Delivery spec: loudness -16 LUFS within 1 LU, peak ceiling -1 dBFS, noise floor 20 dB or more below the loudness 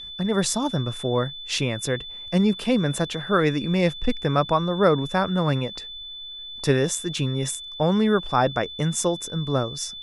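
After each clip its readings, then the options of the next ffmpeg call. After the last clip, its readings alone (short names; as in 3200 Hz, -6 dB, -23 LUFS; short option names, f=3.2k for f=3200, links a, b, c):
steady tone 3500 Hz; tone level -35 dBFS; loudness -23.5 LUFS; peak -5.0 dBFS; loudness target -16.0 LUFS
-> -af "bandreject=f=3.5k:w=30"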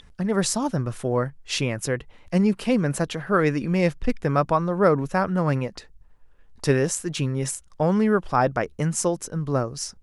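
steady tone none; loudness -24.0 LUFS; peak -5.5 dBFS; loudness target -16.0 LUFS
-> -af "volume=8dB,alimiter=limit=-1dB:level=0:latency=1"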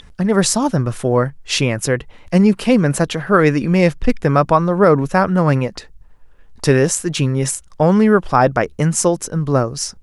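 loudness -16.0 LUFS; peak -1.0 dBFS; noise floor -44 dBFS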